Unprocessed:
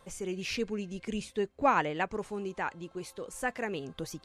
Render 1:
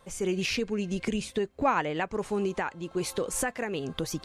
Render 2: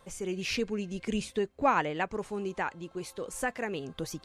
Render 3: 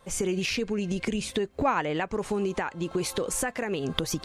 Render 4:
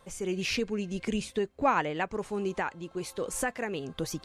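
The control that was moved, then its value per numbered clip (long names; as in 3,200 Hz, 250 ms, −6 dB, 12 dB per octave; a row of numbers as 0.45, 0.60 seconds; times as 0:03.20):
camcorder AGC, rising by: 32, 5.3, 87, 13 dB per second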